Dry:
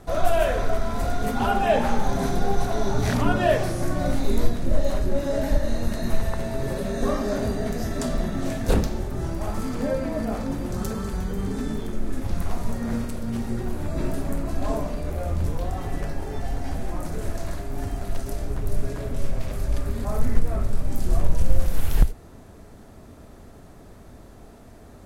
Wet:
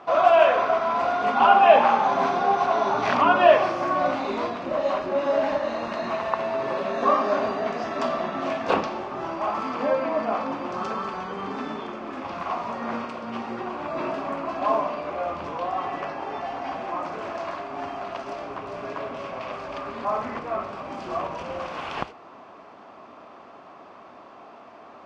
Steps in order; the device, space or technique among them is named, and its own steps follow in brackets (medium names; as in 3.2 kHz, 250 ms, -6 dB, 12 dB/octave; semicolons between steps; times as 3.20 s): phone earpiece (cabinet simulation 430–4200 Hz, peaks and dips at 440 Hz -5 dB, 760 Hz +3 dB, 1.1 kHz +10 dB, 1.8 kHz -4 dB, 2.6 kHz +4 dB, 3.9 kHz -7 dB); trim +5.5 dB